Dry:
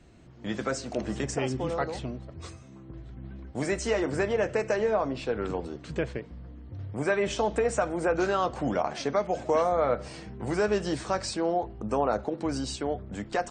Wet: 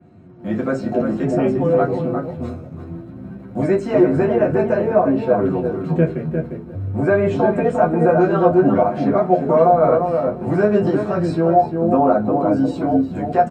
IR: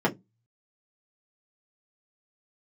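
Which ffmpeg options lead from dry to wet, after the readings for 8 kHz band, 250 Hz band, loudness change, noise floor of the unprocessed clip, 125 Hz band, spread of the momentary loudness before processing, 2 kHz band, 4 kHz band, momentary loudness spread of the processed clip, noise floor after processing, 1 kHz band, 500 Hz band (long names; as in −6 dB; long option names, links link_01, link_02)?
below −10 dB, +14.5 dB, +11.5 dB, −48 dBFS, +14.0 dB, 16 LU, +4.5 dB, can't be measured, 13 LU, −36 dBFS, +11.5 dB, +11.5 dB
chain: -filter_complex "[0:a]asplit=2[link_01][link_02];[link_02]adelay=352,lowpass=frequency=1500:poles=1,volume=-4dB,asplit=2[link_03][link_04];[link_04]adelay=352,lowpass=frequency=1500:poles=1,volume=0.16,asplit=2[link_05][link_06];[link_06]adelay=352,lowpass=frequency=1500:poles=1,volume=0.16[link_07];[link_01][link_03][link_05][link_07]amix=inputs=4:normalize=0,asplit=2[link_08][link_09];[link_09]acrusher=bits=6:mix=0:aa=0.000001,volume=-11dB[link_10];[link_08][link_10]amix=inputs=2:normalize=0,flanger=delay=9.9:depth=2.8:regen=37:speed=0.56:shape=sinusoidal[link_11];[1:a]atrim=start_sample=2205,asetrate=33957,aresample=44100[link_12];[link_11][link_12]afir=irnorm=-1:irlink=0,adynamicequalizer=threshold=0.0501:dfrequency=3100:dqfactor=0.7:tfrequency=3100:tqfactor=0.7:attack=5:release=100:ratio=0.375:range=1.5:mode=cutabove:tftype=highshelf,volume=-7dB"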